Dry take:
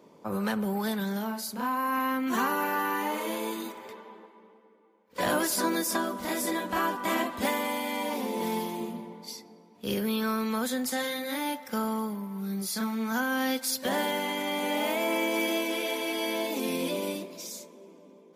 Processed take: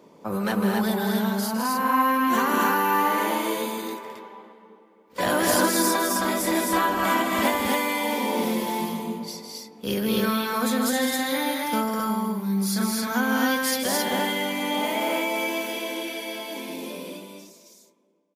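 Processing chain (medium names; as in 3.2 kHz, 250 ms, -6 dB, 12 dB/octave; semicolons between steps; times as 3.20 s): fade out at the end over 5.19 s; loudspeakers at several distances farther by 54 m -8 dB, 72 m -6 dB, 91 m -2 dB; trim +3.5 dB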